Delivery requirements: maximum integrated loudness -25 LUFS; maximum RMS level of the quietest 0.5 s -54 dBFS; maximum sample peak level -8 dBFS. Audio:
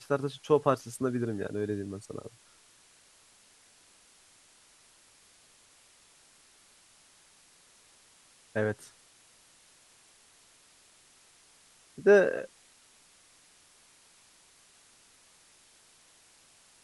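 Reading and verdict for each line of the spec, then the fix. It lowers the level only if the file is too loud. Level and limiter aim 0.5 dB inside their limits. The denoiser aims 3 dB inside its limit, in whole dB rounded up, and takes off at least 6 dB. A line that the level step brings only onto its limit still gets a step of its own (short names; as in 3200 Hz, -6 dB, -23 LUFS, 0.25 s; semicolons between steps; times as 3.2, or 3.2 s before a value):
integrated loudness -29.5 LUFS: OK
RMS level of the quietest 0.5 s -61 dBFS: OK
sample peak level -10.5 dBFS: OK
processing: none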